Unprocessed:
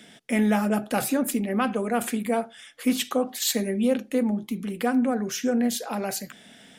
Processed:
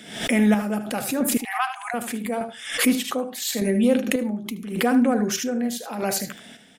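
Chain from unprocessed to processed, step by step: square tremolo 0.83 Hz, depth 60%, duty 45%; in parallel at -1.5 dB: peak limiter -20 dBFS, peak gain reduction 9 dB; 1.37–1.94 s: on the sum: brick-wall FIR high-pass 680 Hz; delay 76 ms -11 dB; swell ahead of each attack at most 89 dB/s

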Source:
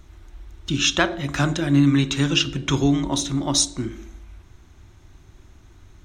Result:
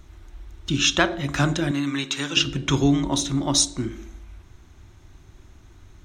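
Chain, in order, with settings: 1.71–2.37 s: high-pass 720 Hz 6 dB/octave

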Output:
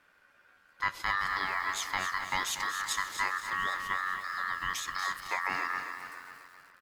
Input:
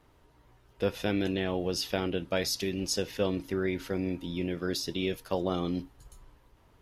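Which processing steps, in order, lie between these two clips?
ring modulator 1.5 kHz; on a send: feedback delay 269 ms, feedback 49%, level -10 dB; on the sum: bit-crushed delay 236 ms, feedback 55%, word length 8-bit, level -11 dB

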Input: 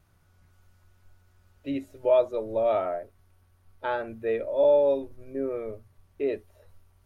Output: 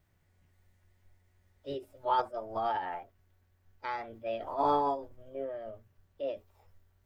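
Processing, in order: formant shift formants +5 st; trim -7.5 dB

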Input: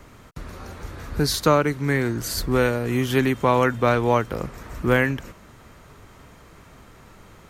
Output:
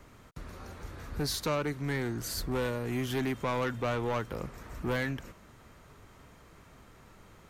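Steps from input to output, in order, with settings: saturation -18 dBFS, distortion -9 dB; trim -7.5 dB

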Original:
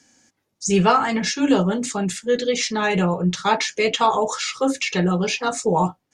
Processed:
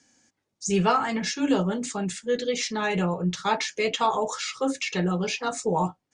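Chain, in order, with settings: steep low-pass 10 kHz 72 dB/octave; trim -5.5 dB

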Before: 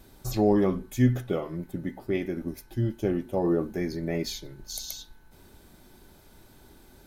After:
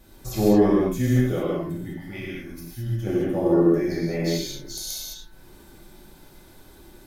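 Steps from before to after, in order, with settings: 1.75–3.07 s: peaking EQ 420 Hz -14.5 dB 2.1 oct; gated-style reverb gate 240 ms flat, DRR -6.5 dB; trim -2.5 dB

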